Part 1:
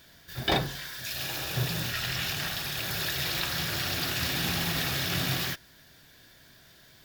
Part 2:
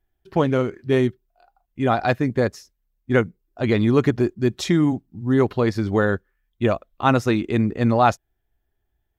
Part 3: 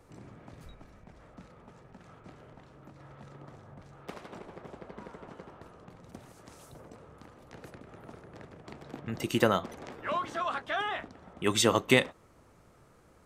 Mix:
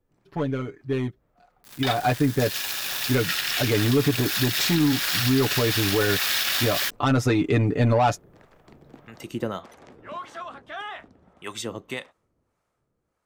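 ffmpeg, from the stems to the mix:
-filter_complex "[0:a]highpass=1100,aeval=exprs='sgn(val(0))*max(abs(val(0))-0.00794,0)':c=same,acrusher=bits=6:mix=0:aa=0.000001,adelay=1350,volume=0.944[s0];[1:a]asoftclip=type=tanh:threshold=0.237,aecho=1:1:6.9:0.76,volume=0.376[s1];[2:a]acrossover=split=530[s2][s3];[s2]aeval=exprs='val(0)*(1-0.7/2+0.7/2*cos(2*PI*1.7*n/s))':c=same[s4];[s3]aeval=exprs='val(0)*(1-0.7/2-0.7/2*cos(2*PI*1.7*n/s))':c=same[s5];[s4][s5]amix=inputs=2:normalize=0,volume=0.2[s6];[s0][s1][s6]amix=inputs=3:normalize=0,dynaudnorm=f=230:g=17:m=5.01,alimiter=limit=0.251:level=0:latency=1:release=109"

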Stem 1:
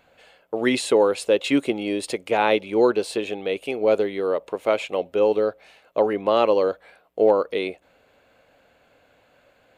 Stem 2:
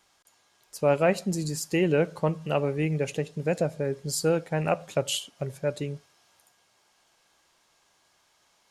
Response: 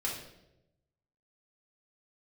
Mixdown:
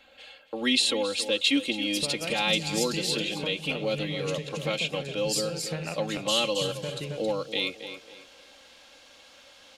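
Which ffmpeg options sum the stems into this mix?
-filter_complex "[0:a]aecho=1:1:3.7:0.99,volume=0.562,asplit=2[s0][s1];[s1]volume=0.188[s2];[1:a]acompressor=threshold=0.0224:ratio=6,adelay=1200,volume=1.12,asplit=3[s3][s4][s5];[s4]volume=0.266[s6];[s5]volume=0.668[s7];[2:a]atrim=start_sample=2205[s8];[s6][s8]afir=irnorm=-1:irlink=0[s9];[s2][s7]amix=inputs=2:normalize=0,aecho=0:1:272|544|816|1088:1|0.27|0.0729|0.0197[s10];[s0][s3][s9][s10]amix=inputs=4:normalize=0,equalizer=f=3500:w=0.88:g=12,acrossover=split=220|3000[s11][s12][s13];[s12]acompressor=threshold=0.0141:ratio=2[s14];[s11][s14][s13]amix=inputs=3:normalize=0"

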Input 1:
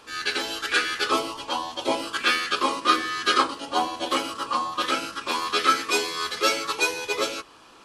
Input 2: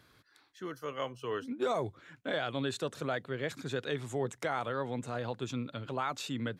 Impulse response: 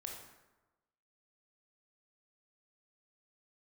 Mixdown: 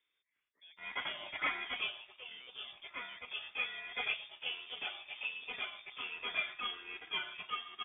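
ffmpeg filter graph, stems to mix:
-filter_complex "[0:a]aphaser=in_gain=1:out_gain=1:delay=3.1:decay=0.31:speed=1.5:type=triangular,aeval=exprs='sgn(val(0))*max(abs(val(0))-0.00794,0)':c=same,adelay=700,volume=0.562,afade=t=out:st=1.46:d=0.79:silence=0.281838,afade=t=in:st=3.24:d=0.54:silence=0.473151,asplit=2[s0][s1];[s1]volume=0.224[s2];[1:a]volume=22.4,asoftclip=hard,volume=0.0447,volume=0.112[s3];[2:a]atrim=start_sample=2205[s4];[s2][s4]afir=irnorm=-1:irlink=0[s5];[s0][s3][s5]amix=inputs=3:normalize=0,lowpass=f=3100:t=q:w=0.5098,lowpass=f=3100:t=q:w=0.6013,lowpass=f=3100:t=q:w=0.9,lowpass=f=3100:t=q:w=2.563,afreqshift=-3700"

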